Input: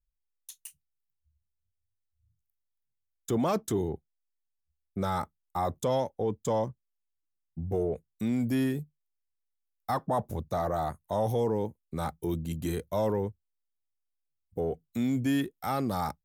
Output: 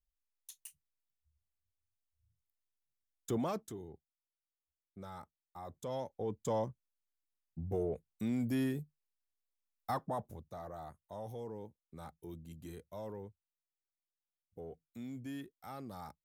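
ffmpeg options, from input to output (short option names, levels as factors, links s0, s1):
-af "volume=2,afade=t=out:st=3.31:d=0.46:silence=0.251189,afade=t=in:st=5.64:d=0.89:silence=0.251189,afade=t=out:st=9.9:d=0.51:silence=0.298538"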